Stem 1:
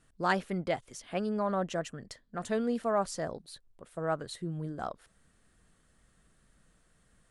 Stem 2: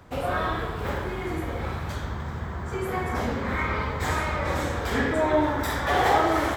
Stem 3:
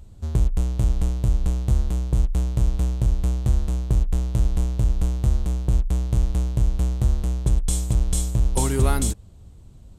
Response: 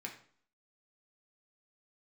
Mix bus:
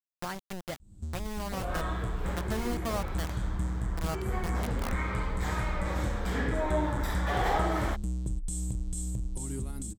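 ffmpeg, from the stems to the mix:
-filter_complex "[0:a]aeval=exprs='val(0)*gte(abs(val(0)),0.0376)':channel_layout=same,volume=3dB[link_01];[1:a]adelay=1400,volume=-13dB[link_02];[2:a]equalizer=frequency=200:width_type=o:width=0.33:gain=10,equalizer=frequency=315:width_type=o:width=0.33:gain=11,equalizer=frequency=8000:width_type=o:width=0.33:gain=11,alimiter=limit=-13dB:level=0:latency=1:release=139,adelay=800,volume=-14.5dB[link_03];[link_01][link_03]amix=inputs=2:normalize=0,bass=frequency=250:gain=8,treble=frequency=4000:gain=5,acompressor=threshold=-35dB:ratio=5,volume=0dB[link_04];[link_02][link_04]amix=inputs=2:normalize=0,dynaudnorm=framelen=340:gausssize=9:maxgain=5dB"

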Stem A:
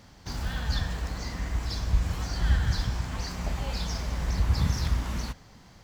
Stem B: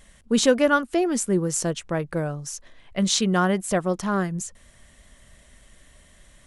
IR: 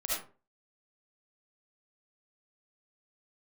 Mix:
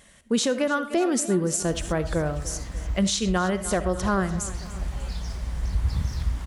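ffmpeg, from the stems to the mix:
-filter_complex "[0:a]lowshelf=frequency=85:gain=11,adelay=1350,volume=-6.5dB[link_01];[1:a]highpass=frequency=110:poles=1,volume=0.5dB,asplit=4[link_02][link_03][link_04][link_05];[link_03]volume=-16.5dB[link_06];[link_04]volume=-16.5dB[link_07];[link_05]apad=whole_len=316991[link_08];[link_01][link_08]sidechaincompress=threshold=-26dB:ratio=8:attack=6.9:release=451[link_09];[2:a]atrim=start_sample=2205[link_10];[link_06][link_10]afir=irnorm=-1:irlink=0[link_11];[link_07]aecho=0:1:295|590|885|1180|1475|1770|2065|2360:1|0.54|0.292|0.157|0.085|0.0459|0.0248|0.0134[link_12];[link_09][link_02][link_11][link_12]amix=inputs=4:normalize=0,alimiter=limit=-14dB:level=0:latency=1:release=199"

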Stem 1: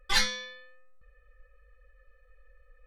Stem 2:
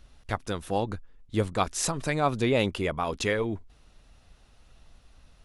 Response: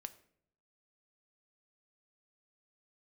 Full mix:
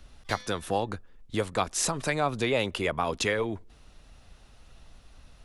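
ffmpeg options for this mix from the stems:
-filter_complex "[0:a]adelay=150,volume=-14.5dB,asplit=2[link_01][link_02];[link_02]volume=-18.5dB[link_03];[1:a]volume=3dB,asplit=3[link_04][link_05][link_06];[link_05]volume=-19dB[link_07];[link_06]apad=whole_len=133077[link_08];[link_01][link_08]sidechaingate=range=-33dB:threshold=-41dB:ratio=16:detection=peak[link_09];[2:a]atrim=start_sample=2205[link_10];[link_03][link_07]amix=inputs=2:normalize=0[link_11];[link_11][link_10]afir=irnorm=-1:irlink=0[link_12];[link_09][link_04][link_12]amix=inputs=3:normalize=0,acrossover=split=100|460[link_13][link_14][link_15];[link_13]acompressor=threshold=-45dB:ratio=4[link_16];[link_14]acompressor=threshold=-33dB:ratio=4[link_17];[link_15]acompressor=threshold=-24dB:ratio=4[link_18];[link_16][link_17][link_18]amix=inputs=3:normalize=0"

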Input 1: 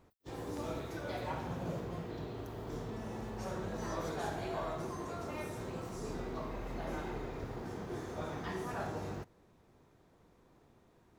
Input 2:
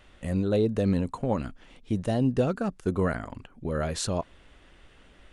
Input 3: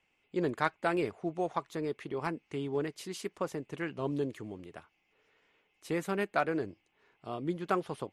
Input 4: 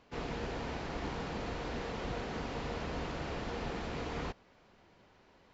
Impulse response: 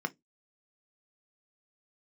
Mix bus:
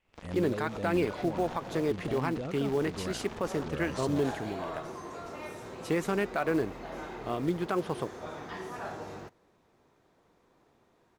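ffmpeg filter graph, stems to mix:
-filter_complex "[0:a]lowshelf=frequency=220:gain=-10.5,adelay=50,volume=-9dB[link_01];[1:a]agate=range=-17dB:threshold=-51dB:ratio=16:detection=peak,alimiter=limit=-19.5dB:level=0:latency=1,volume=-9.5dB,asplit=2[link_02][link_03];[2:a]acrusher=bits=6:mode=log:mix=0:aa=0.000001,volume=-5.5dB[link_04];[3:a]acrusher=bits=4:mix=0:aa=0.5,volume=-13.5dB[link_05];[link_03]apad=whole_len=495578[link_06];[link_01][link_06]sidechaincompress=threshold=-41dB:ratio=8:attack=6.2:release=101[link_07];[link_07][link_04][link_05]amix=inputs=3:normalize=0,dynaudnorm=framelen=110:gausssize=3:maxgain=11dB,alimiter=limit=-18.5dB:level=0:latency=1:release=57,volume=0dB[link_08];[link_02][link_08]amix=inputs=2:normalize=0,highshelf=frequency=9600:gain=-6.5"

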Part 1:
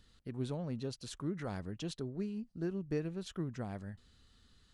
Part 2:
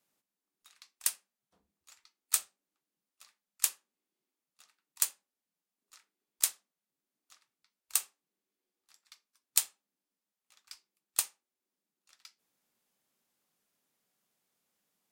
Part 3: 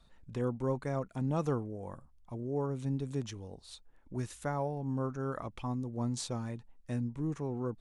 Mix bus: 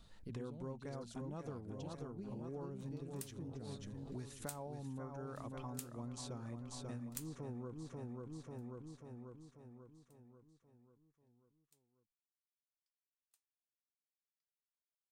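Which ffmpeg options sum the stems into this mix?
ffmpeg -i stem1.wav -i stem2.wav -i stem3.wav -filter_complex "[0:a]equalizer=frequency=1200:width=0.66:gain=-11,bandreject=frequency=1800:width=12,volume=-1dB[link_01];[1:a]adelay=2150,volume=-4.5dB[link_02];[2:a]volume=-0.5dB,asplit=3[link_03][link_04][link_05];[link_04]volume=-7dB[link_06];[link_05]apad=whole_len=761374[link_07];[link_02][link_07]sidechaingate=range=-44dB:threshold=-50dB:ratio=16:detection=peak[link_08];[link_06]aecho=0:1:540|1080|1620|2160|2700|3240|3780|4320:1|0.53|0.281|0.149|0.0789|0.0418|0.0222|0.0117[link_09];[link_01][link_08][link_03][link_09]amix=inputs=4:normalize=0,acompressor=threshold=-44dB:ratio=5" out.wav

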